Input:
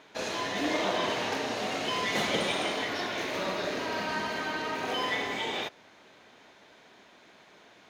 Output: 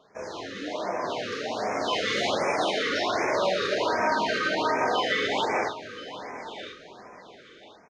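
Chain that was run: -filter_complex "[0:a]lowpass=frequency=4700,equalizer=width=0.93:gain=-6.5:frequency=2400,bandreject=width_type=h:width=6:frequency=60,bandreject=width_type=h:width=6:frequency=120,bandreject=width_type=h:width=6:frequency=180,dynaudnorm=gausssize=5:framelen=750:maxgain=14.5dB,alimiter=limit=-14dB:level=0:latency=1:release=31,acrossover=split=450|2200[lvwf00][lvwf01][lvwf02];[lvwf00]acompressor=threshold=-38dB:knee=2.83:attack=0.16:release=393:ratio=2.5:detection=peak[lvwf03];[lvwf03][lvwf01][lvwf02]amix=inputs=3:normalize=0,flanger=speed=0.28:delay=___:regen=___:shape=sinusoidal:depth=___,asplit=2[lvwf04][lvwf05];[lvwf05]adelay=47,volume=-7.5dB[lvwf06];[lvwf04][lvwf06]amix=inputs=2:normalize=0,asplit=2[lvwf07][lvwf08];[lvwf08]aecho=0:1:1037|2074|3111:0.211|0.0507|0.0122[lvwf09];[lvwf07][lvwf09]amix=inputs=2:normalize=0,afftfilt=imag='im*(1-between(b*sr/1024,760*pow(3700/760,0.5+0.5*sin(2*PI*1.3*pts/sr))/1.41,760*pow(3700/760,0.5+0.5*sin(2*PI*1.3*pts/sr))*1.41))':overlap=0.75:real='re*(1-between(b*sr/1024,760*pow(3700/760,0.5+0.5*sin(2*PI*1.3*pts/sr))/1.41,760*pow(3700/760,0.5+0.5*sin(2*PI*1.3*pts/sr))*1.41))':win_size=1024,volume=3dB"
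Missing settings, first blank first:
1.6, -55, 8.3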